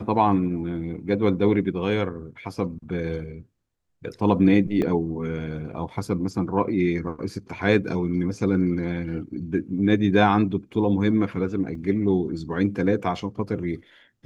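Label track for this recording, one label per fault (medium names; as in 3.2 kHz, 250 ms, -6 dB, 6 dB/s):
4.820000	4.820000	dropout 2 ms
11.750000	11.750000	dropout 2.6 ms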